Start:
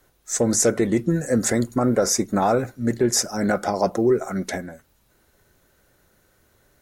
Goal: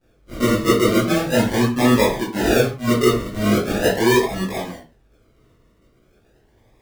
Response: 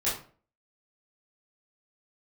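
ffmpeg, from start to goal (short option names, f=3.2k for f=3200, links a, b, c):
-filter_complex "[0:a]asettb=1/sr,asplit=3[a][b][c];[a]atrim=end=2.054[d];[b]atrim=start=2.05:end=2.49,asetpts=PTS-STARTPTS,afade=t=in:d=0.004:c=qsin,afade=t=out:st=0.436:d=0.004:c=qsin,aemphasis=mode=production:type=bsi[e];[c]atrim=start=2.486[f];[d][e]acrossfade=d=0.004:c1=hsin:c2=qsin[g];[g][f]acrossfade=d=0.004:c1=qsin:c2=hsin,acrossover=split=1000[h][i];[i]acompressor=threshold=-33dB:ratio=5[j];[h][j]amix=inputs=2:normalize=0,acrusher=samples=42:mix=1:aa=0.000001:lfo=1:lforange=25.2:lforate=0.4[k];[1:a]atrim=start_sample=2205,afade=t=out:st=0.2:d=0.01,atrim=end_sample=9261[l];[k][l]afir=irnorm=-1:irlink=0,volume=-5dB"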